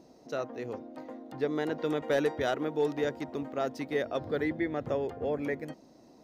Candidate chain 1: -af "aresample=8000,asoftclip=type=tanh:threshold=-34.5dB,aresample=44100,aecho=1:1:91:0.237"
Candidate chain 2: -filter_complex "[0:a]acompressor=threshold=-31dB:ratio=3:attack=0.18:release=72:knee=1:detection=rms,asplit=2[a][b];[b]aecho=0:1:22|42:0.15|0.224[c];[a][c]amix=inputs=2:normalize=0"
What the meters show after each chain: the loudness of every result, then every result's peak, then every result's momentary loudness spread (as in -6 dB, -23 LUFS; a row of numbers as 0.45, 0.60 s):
-39.5, -37.5 LUFS; -30.5, -24.5 dBFS; 7, 7 LU